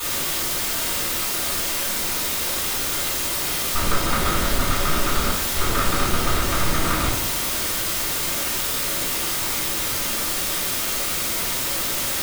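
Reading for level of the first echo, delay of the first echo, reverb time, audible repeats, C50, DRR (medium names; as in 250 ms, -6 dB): no echo, no echo, 0.70 s, no echo, 3.0 dB, -11.5 dB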